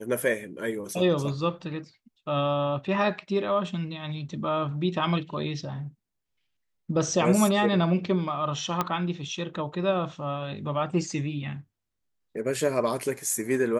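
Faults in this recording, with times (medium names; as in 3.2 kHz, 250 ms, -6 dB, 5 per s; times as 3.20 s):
8.81 s: pop -11 dBFS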